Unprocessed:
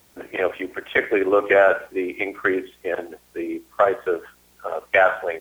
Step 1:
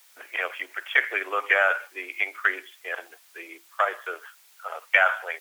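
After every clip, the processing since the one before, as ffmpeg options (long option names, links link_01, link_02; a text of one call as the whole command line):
ffmpeg -i in.wav -af "highpass=1300,volume=2dB" out.wav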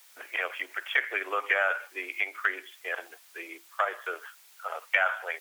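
ffmpeg -i in.wav -af "acompressor=threshold=-30dB:ratio=1.5" out.wav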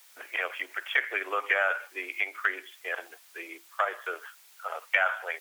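ffmpeg -i in.wav -af anull out.wav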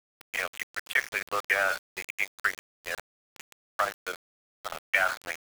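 ffmpeg -i in.wav -af "aeval=exprs='val(0)*gte(abs(val(0)),0.0282)':channel_layout=same" out.wav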